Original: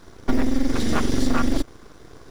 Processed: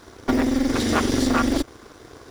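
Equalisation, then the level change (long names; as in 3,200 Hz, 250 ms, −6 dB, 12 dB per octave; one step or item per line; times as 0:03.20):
high-pass filter 88 Hz 6 dB per octave
parametric band 170 Hz −10 dB 0.43 octaves
+4.0 dB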